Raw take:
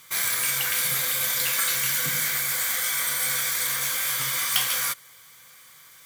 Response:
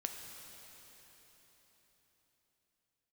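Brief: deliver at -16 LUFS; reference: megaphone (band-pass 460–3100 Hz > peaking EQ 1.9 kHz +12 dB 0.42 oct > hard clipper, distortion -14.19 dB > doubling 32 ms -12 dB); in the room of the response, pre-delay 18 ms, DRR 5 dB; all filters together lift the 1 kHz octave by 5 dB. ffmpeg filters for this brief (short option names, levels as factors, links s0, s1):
-filter_complex "[0:a]equalizer=f=1000:t=o:g=5,asplit=2[s0][s1];[1:a]atrim=start_sample=2205,adelay=18[s2];[s1][s2]afir=irnorm=-1:irlink=0,volume=0.562[s3];[s0][s3]amix=inputs=2:normalize=0,highpass=460,lowpass=3100,equalizer=f=1900:t=o:w=0.42:g=12,asoftclip=type=hard:threshold=0.1,asplit=2[s4][s5];[s5]adelay=32,volume=0.251[s6];[s4][s6]amix=inputs=2:normalize=0,volume=2.24"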